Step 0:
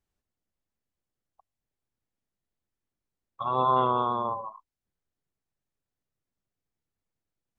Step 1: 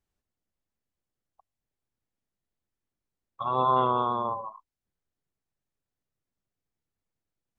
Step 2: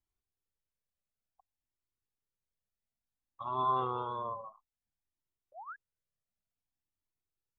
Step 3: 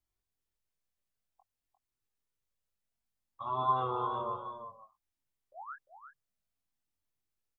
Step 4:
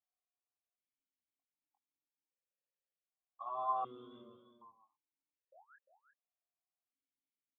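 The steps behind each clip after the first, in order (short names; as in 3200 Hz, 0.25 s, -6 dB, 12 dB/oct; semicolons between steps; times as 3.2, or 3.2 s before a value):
nothing audible
painted sound rise, 5.52–5.76, 550–1700 Hz -37 dBFS; cascading flanger rising 0.57 Hz; gain -4.5 dB
doubler 22 ms -5 dB; echo 0.35 s -9 dB
vowel sequencer 1.3 Hz; gain +2 dB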